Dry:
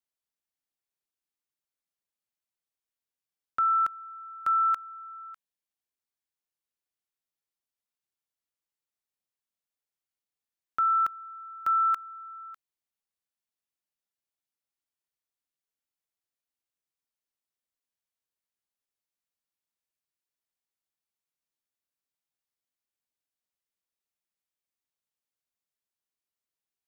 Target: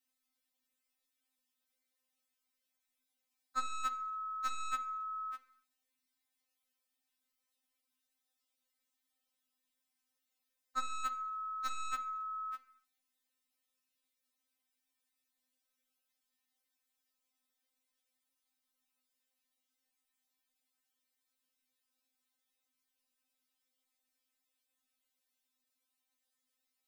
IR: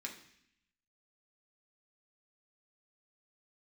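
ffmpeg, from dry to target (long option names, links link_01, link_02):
-filter_complex "[0:a]tremolo=f=41:d=0.571,aeval=exprs='0.106*(cos(1*acos(clip(val(0)/0.106,-1,1)))-cos(1*PI/2))+0.0237*(cos(5*acos(clip(val(0)/0.106,-1,1)))-cos(5*PI/2))+0.00473*(cos(6*acos(clip(val(0)/0.106,-1,1)))-cos(6*PI/2))':channel_layout=same,asplit=2[link_01][link_02];[1:a]atrim=start_sample=2205,afade=type=out:start_time=0.35:duration=0.01,atrim=end_sample=15876[link_03];[link_02][link_03]afir=irnorm=-1:irlink=0,volume=0dB[link_04];[link_01][link_04]amix=inputs=2:normalize=0,afftfilt=real='re*3.46*eq(mod(b,12),0)':imag='im*3.46*eq(mod(b,12),0)':win_size=2048:overlap=0.75,volume=1dB"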